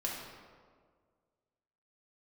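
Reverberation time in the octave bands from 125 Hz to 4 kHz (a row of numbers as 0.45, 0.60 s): 2.0, 1.9, 1.9, 1.6, 1.3, 1.0 s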